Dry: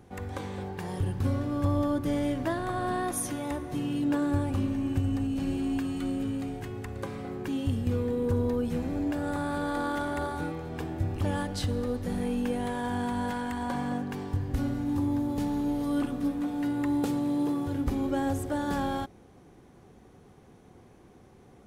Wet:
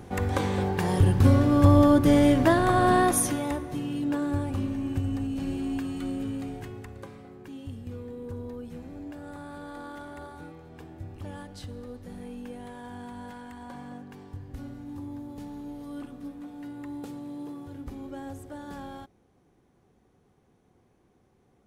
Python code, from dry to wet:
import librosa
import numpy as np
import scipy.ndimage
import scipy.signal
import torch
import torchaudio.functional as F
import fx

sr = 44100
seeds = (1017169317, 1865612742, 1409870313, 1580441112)

y = fx.gain(x, sr, db=fx.line((3.01, 9.5), (3.82, -1.0), (6.6, -1.0), (7.3, -10.5)))